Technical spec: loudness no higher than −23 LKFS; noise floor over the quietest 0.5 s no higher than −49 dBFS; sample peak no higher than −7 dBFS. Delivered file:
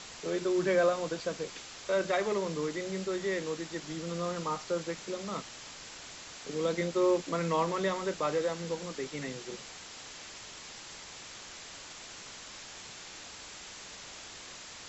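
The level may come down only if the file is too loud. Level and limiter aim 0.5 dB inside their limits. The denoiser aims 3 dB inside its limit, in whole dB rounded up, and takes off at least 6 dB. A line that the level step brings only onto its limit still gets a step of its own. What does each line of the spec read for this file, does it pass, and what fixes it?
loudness −34.5 LKFS: in spec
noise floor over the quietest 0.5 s −47 dBFS: out of spec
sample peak −16.5 dBFS: in spec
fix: broadband denoise 6 dB, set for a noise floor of −47 dBFS

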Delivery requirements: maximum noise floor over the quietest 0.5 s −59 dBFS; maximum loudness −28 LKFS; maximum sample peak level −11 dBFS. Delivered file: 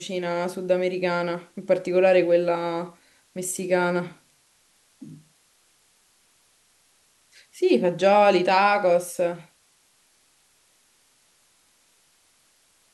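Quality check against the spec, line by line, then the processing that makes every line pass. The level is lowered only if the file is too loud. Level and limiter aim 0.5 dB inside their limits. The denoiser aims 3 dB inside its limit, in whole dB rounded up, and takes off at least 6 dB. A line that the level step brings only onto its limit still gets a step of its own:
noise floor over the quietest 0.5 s −63 dBFS: in spec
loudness −22.5 LKFS: out of spec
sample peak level −7.0 dBFS: out of spec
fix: level −6 dB

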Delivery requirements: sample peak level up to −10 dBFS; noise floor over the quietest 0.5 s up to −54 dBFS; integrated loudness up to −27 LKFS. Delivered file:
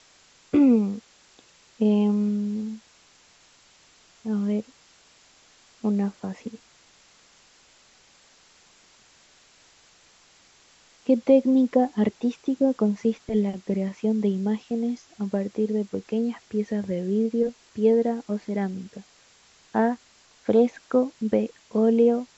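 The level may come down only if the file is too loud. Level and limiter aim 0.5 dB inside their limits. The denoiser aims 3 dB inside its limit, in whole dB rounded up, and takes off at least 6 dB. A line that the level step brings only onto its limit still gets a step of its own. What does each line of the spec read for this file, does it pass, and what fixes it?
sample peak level −7.5 dBFS: out of spec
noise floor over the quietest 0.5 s −57 dBFS: in spec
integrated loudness −24.5 LKFS: out of spec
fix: level −3 dB

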